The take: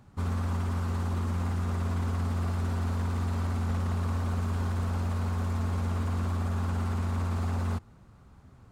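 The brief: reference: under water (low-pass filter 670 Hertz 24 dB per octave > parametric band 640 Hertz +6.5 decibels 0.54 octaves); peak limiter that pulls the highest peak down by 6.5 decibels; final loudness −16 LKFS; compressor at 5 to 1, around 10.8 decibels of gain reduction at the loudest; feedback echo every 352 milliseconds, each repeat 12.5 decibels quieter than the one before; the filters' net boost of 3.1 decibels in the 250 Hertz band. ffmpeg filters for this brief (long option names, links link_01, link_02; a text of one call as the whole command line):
ffmpeg -i in.wav -af "equalizer=frequency=250:width_type=o:gain=3.5,acompressor=threshold=-38dB:ratio=5,alimiter=level_in=12dB:limit=-24dB:level=0:latency=1,volume=-12dB,lowpass=frequency=670:width=0.5412,lowpass=frequency=670:width=1.3066,equalizer=frequency=640:width_type=o:width=0.54:gain=6.5,aecho=1:1:352|704|1056:0.237|0.0569|0.0137,volume=27dB" out.wav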